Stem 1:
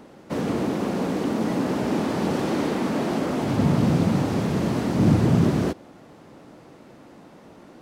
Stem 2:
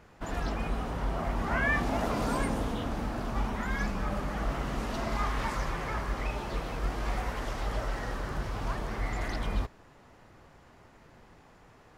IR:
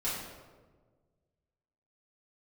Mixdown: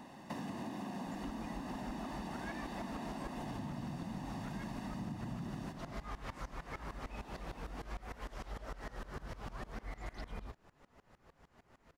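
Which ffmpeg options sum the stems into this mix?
-filter_complex "[0:a]lowshelf=frequency=160:gain=-7.5,aecho=1:1:1.1:0.75,acompressor=threshold=-31dB:ratio=1.5,volume=-6dB,asplit=2[link_01][link_02];[link_02]volume=-14dB[link_03];[1:a]flanger=delay=3.9:depth=1.8:regen=-67:speed=1.9:shape=triangular,aeval=exprs='val(0)*pow(10,-21*if(lt(mod(-6.6*n/s,1),2*abs(-6.6)/1000),1-mod(-6.6*n/s,1)/(2*abs(-6.6)/1000),(mod(-6.6*n/s,1)-2*abs(-6.6)/1000)/(1-2*abs(-6.6)/1000))/20)':channel_layout=same,adelay=850,volume=2.5dB[link_04];[2:a]atrim=start_sample=2205[link_05];[link_03][link_05]afir=irnorm=-1:irlink=0[link_06];[link_01][link_04][link_06]amix=inputs=3:normalize=0,acompressor=threshold=-40dB:ratio=6"

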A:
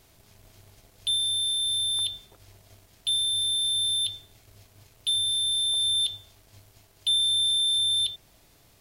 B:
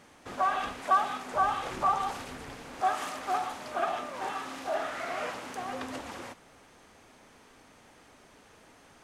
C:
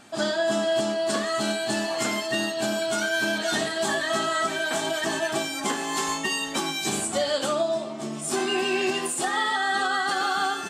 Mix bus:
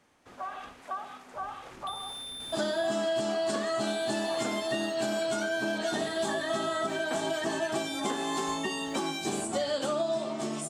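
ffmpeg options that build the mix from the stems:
ffmpeg -i stem1.wav -i stem2.wav -i stem3.wav -filter_complex "[0:a]aeval=exprs='val(0)*gte(abs(val(0)),0.0168)':channel_layout=same,adelay=800,volume=-13dB[link_01];[1:a]volume=-10dB[link_02];[2:a]lowpass=12000,adelay=2400,volume=1dB[link_03];[link_01][link_02][link_03]amix=inputs=3:normalize=0,acrossover=split=250|910[link_04][link_05][link_06];[link_04]acompressor=threshold=-42dB:ratio=4[link_07];[link_05]acompressor=threshold=-30dB:ratio=4[link_08];[link_06]acompressor=threshold=-37dB:ratio=4[link_09];[link_07][link_08][link_09]amix=inputs=3:normalize=0" out.wav

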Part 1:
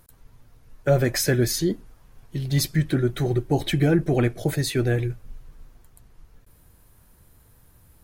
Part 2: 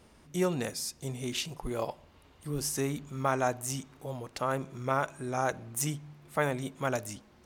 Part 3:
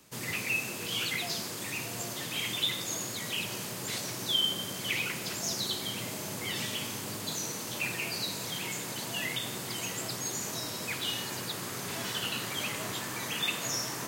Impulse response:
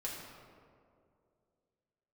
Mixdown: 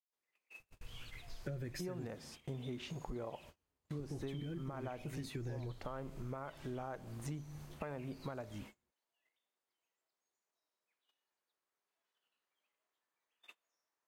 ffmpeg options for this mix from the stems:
-filter_complex "[0:a]equalizer=frequency=820:width_type=o:width=1.5:gain=-14,alimiter=limit=-23.5dB:level=0:latency=1:release=339,adelay=600,volume=-0.5dB,asplit=3[link_01][link_02][link_03];[link_01]atrim=end=2.07,asetpts=PTS-STARTPTS,afade=type=out:start_time=2.066:duration=0.004:curve=hsin[link_04];[link_02]atrim=start=2.07:end=3.99,asetpts=PTS-STARTPTS,volume=0[link_05];[link_03]atrim=start=3.99,asetpts=PTS-STARTPTS,afade=type=in:duration=0.004:curve=hsin[link_06];[link_04][link_05][link_06]concat=n=3:v=0:a=1[link_07];[1:a]lowpass=frequency=1600:poles=1,adelay=1450,volume=2.5dB[link_08];[2:a]highpass=530,volume=-18dB[link_09];[link_07][link_08]amix=inputs=2:normalize=0,alimiter=limit=-22dB:level=0:latency=1:release=439,volume=0dB[link_10];[link_09][link_10]amix=inputs=2:normalize=0,highshelf=frequency=3600:gain=-10,agate=range=-32dB:threshold=-50dB:ratio=16:detection=peak,acompressor=threshold=-41dB:ratio=5"

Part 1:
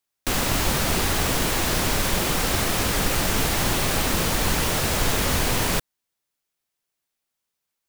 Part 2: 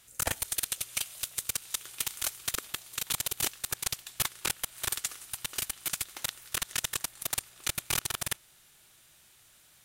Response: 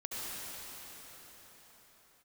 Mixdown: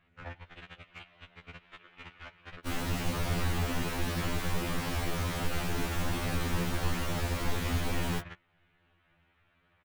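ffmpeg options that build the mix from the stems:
-filter_complex "[0:a]adelay=2400,volume=-8.5dB[link_01];[1:a]lowpass=frequency=2600:width=0.5412,lowpass=frequency=2600:width=1.3066,alimiter=limit=-24dB:level=0:latency=1:release=342,asoftclip=type=tanh:threshold=-32.5dB,volume=0dB[link_02];[link_01][link_02]amix=inputs=2:normalize=0,bass=frequency=250:gain=5,treble=frequency=4000:gain=-7,afftfilt=real='re*2*eq(mod(b,4),0)':imag='im*2*eq(mod(b,4),0)':win_size=2048:overlap=0.75"

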